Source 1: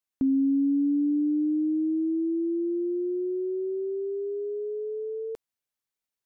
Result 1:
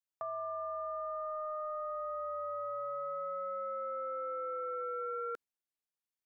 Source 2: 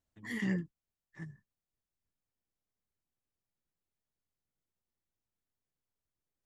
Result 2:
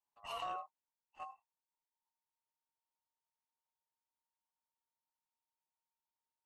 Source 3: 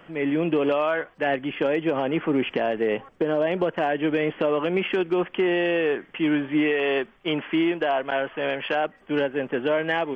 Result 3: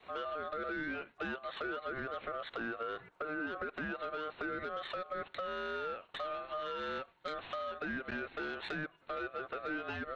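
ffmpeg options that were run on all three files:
ffmpeg -i in.wav -af "acompressor=threshold=-35dB:ratio=8,agate=range=-6dB:threshold=-50dB:ratio=16:detection=peak,adynamicequalizer=threshold=0.00316:dfrequency=590:dqfactor=1.4:tfrequency=590:tqfactor=1.4:attack=5:release=100:ratio=0.375:range=2.5:mode=boostabove:tftype=bell,asoftclip=type=tanh:threshold=-28.5dB,aeval=exprs='val(0)*sin(2*PI*920*n/s)':channel_layout=same" out.wav

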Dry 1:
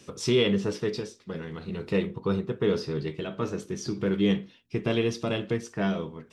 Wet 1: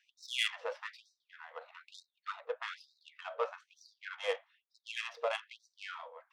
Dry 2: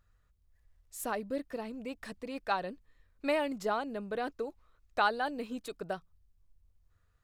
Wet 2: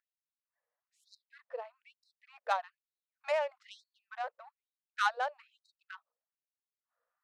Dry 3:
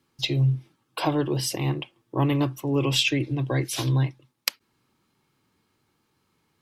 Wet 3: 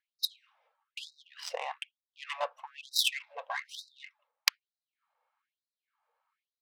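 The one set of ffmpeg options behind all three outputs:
ffmpeg -i in.wav -af "aeval=exprs='val(0)+0.00631*(sin(2*PI*60*n/s)+sin(2*PI*2*60*n/s)/2+sin(2*PI*3*60*n/s)/3+sin(2*PI*4*60*n/s)/4+sin(2*PI*5*60*n/s)/5)':channel_layout=same,adynamicsmooth=sensitivity=2:basefreq=1300,afftfilt=real='re*gte(b*sr/1024,450*pow(3800/450,0.5+0.5*sin(2*PI*1.1*pts/sr)))':imag='im*gte(b*sr/1024,450*pow(3800/450,0.5+0.5*sin(2*PI*1.1*pts/sr)))':win_size=1024:overlap=0.75,volume=1dB" out.wav

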